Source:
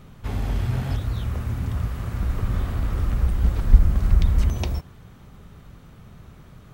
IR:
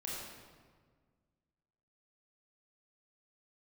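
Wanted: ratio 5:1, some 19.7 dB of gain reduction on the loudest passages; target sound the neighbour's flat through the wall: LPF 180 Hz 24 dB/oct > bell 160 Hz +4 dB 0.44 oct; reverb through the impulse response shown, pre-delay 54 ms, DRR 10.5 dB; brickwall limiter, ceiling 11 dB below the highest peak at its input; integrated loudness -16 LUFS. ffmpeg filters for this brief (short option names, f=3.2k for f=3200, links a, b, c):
-filter_complex "[0:a]acompressor=threshold=-28dB:ratio=5,alimiter=level_in=5dB:limit=-24dB:level=0:latency=1,volume=-5dB,asplit=2[a][b];[1:a]atrim=start_sample=2205,adelay=54[c];[b][c]afir=irnorm=-1:irlink=0,volume=-11.5dB[d];[a][d]amix=inputs=2:normalize=0,lowpass=f=180:w=0.5412,lowpass=f=180:w=1.3066,equalizer=f=160:t=o:w=0.44:g=4,volume=23.5dB"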